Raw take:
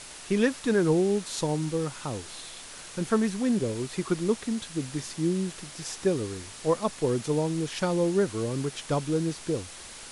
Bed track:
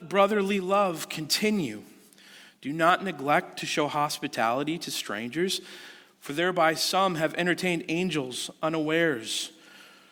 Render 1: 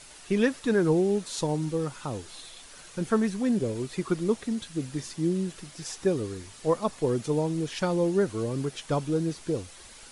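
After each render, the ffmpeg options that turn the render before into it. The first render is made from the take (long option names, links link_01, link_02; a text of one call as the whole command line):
ffmpeg -i in.wav -af "afftdn=noise_reduction=7:noise_floor=-44" out.wav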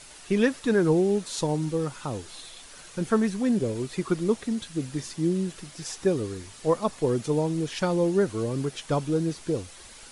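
ffmpeg -i in.wav -af "volume=1.5dB" out.wav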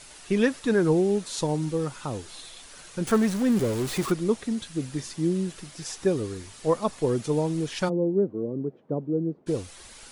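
ffmpeg -i in.wav -filter_complex "[0:a]asettb=1/sr,asplit=3[link_01][link_02][link_03];[link_01]atrim=end=3.074[link_04];[link_02]atrim=start=3.07:end=4.12,asetpts=PTS-STARTPTS,afade=type=in:duration=0.004:curve=qsin,afade=type=out:start_time=1.046:duration=0.004:curve=qsin,aeval=exprs='val(0)+0.5*0.0316*sgn(val(0))':channel_layout=same[link_05];[link_03]atrim=start=4.116[link_06];[link_04][link_05]acrossfade=duration=0.004:curve1=hsin:curve2=qsin[link_07];[link_07][link_06]acrossfade=duration=0.004:curve1=qsin:curve2=hsin,asplit=3[link_08][link_09][link_10];[link_08]afade=type=out:start_time=7.88:duration=0.02[link_11];[link_09]asuperpass=centerf=290:order=4:qfactor=0.77,afade=type=in:start_time=7.88:duration=0.02,afade=type=out:start_time=9.46:duration=0.02[link_12];[link_10]afade=type=in:start_time=9.46:duration=0.02[link_13];[link_11][link_12][link_13]amix=inputs=3:normalize=0" out.wav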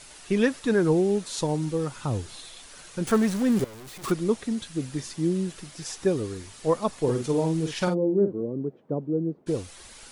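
ffmpeg -i in.wav -filter_complex "[0:a]asettb=1/sr,asplit=3[link_01][link_02][link_03];[link_01]atrim=end=1.964[link_04];[link_02]atrim=start=1.96:end=2.36,asetpts=PTS-STARTPTS,afade=type=in:duration=0.004:curve=qsin,afade=type=out:start_time=0.396:duration=0.004:curve=qsin,equalizer=frequency=97:width=0.78:gain=9[link_05];[link_03]atrim=start=2.356[link_06];[link_04][link_05]acrossfade=duration=0.004:curve1=hsin:curve2=qsin[link_07];[link_07][link_06]acrossfade=duration=0.004:curve1=qsin:curve2=hsin,asettb=1/sr,asplit=3[link_08][link_09][link_10];[link_08]atrim=end=3.644[link_11];[link_09]atrim=start=3.64:end=4.04,asetpts=PTS-STARTPTS,afade=type=in:duration=0.004:curve=qsin,afade=type=out:start_time=0.396:duration=0.004:curve=qsin,aeval=exprs='(tanh(141*val(0)+0.25)-tanh(0.25))/141':channel_layout=same[link_12];[link_10]atrim=start=4.036[link_13];[link_11][link_12]acrossfade=duration=0.004:curve1=hsin:curve2=qsin[link_14];[link_14][link_13]acrossfade=duration=0.004:curve1=qsin:curve2=hsin,asettb=1/sr,asplit=3[link_15][link_16][link_17];[link_15]atrim=end=7.014[link_18];[link_16]atrim=start=7.01:end=8.41,asetpts=PTS-STARTPTS,afade=type=in:duration=0.004:curve=qsin,afade=type=out:start_time=1.396:duration=0.004:curve=qsin,asplit=2[link_19][link_20];[link_20]adelay=50,volume=-7dB[link_21];[link_19][link_21]amix=inputs=2:normalize=0,atrim=end_sample=61740[link_22];[link_17]atrim=start=8.406[link_23];[link_18][link_22]acrossfade=duration=0.004:curve1=hsin:curve2=qsin[link_24];[link_24][link_23]acrossfade=duration=0.004:curve1=qsin:curve2=hsin" out.wav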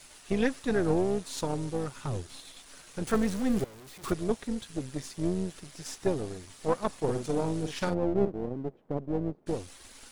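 ffmpeg -i in.wav -af "aeval=exprs='if(lt(val(0),0),0.447*val(0),val(0))':channel_layout=same,tremolo=f=270:d=0.519" out.wav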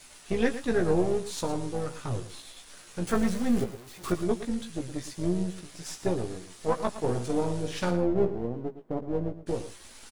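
ffmpeg -i in.wav -filter_complex "[0:a]asplit=2[link_01][link_02];[link_02]adelay=17,volume=-5.5dB[link_03];[link_01][link_03]amix=inputs=2:normalize=0,aecho=1:1:113:0.237" out.wav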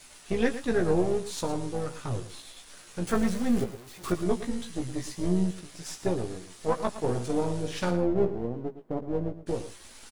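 ffmpeg -i in.wav -filter_complex "[0:a]asettb=1/sr,asplit=3[link_01][link_02][link_03];[link_01]atrim=end=4.244[link_04];[link_02]atrim=start=4.24:end=5.51,asetpts=PTS-STARTPTS,afade=type=in:duration=0.004:curve=qsin,afade=type=out:start_time=1.266:duration=0.004:curve=qsin,asplit=2[link_05][link_06];[link_06]adelay=16,volume=-4dB[link_07];[link_05][link_07]amix=inputs=2:normalize=0,atrim=end_sample=56007[link_08];[link_03]atrim=start=5.506[link_09];[link_04][link_08]acrossfade=duration=0.004:curve1=hsin:curve2=qsin[link_10];[link_10][link_09]acrossfade=duration=0.004:curve1=qsin:curve2=hsin" out.wav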